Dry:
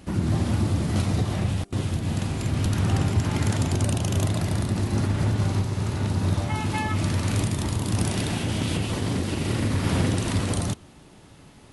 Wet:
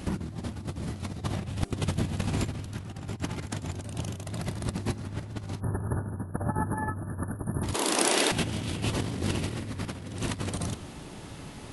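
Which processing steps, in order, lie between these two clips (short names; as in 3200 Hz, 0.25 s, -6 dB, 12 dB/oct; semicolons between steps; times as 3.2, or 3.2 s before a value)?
5.6–7.63 spectral delete 1800–9300 Hz; 7.74–8.32 HPF 340 Hz 24 dB/oct; negative-ratio compressor -30 dBFS, ratio -0.5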